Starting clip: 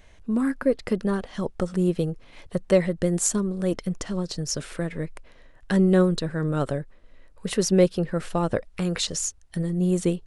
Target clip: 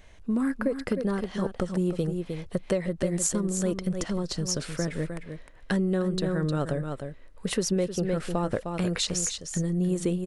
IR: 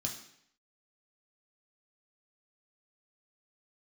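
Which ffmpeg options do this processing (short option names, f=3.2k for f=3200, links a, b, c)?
-af "aecho=1:1:307:0.355,acompressor=threshold=-22dB:ratio=10"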